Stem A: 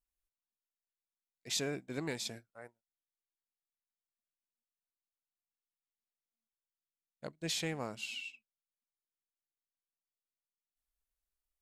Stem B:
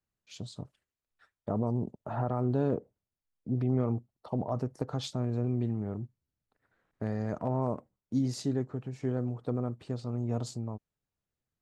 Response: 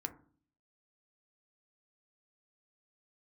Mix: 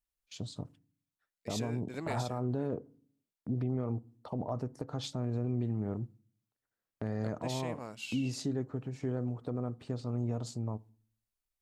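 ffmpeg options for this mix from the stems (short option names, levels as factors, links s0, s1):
-filter_complex "[0:a]volume=0.944[s0];[1:a]agate=range=0.112:threshold=0.002:ratio=16:detection=peak,volume=0.891,asplit=2[s1][s2];[s2]volume=0.266[s3];[2:a]atrim=start_sample=2205[s4];[s3][s4]afir=irnorm=-1:irlink=0[s5];[s0][s1][s5]amix=inputs=3:normalize=0,alimiter=limit=0.0631:level=0:latency=1:release=284"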